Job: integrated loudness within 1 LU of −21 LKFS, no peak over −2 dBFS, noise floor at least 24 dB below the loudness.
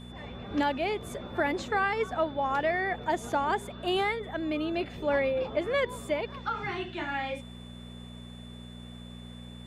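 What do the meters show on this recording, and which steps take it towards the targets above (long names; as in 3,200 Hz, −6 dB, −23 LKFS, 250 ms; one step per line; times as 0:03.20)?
mains hum 60 Hz; hum harmonics up to 240 Hz; level of the hum −42 dBFS; interfering tone 3,500 Hz; level of the tone −52 dBFS; integrated loudness −30.5 LKFS; sample peak −15.5 dBFS; target loudness −21.0 LKFS
→ hum removal 60 Hz, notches 4
notch filter 3,500 Hz, Q 30
level +9.5 dB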